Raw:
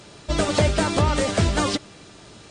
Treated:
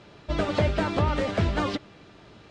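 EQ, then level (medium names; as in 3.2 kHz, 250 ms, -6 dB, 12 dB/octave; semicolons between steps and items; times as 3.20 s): low-pass 3.2 kHz 12 dB/octave; -4.0 dB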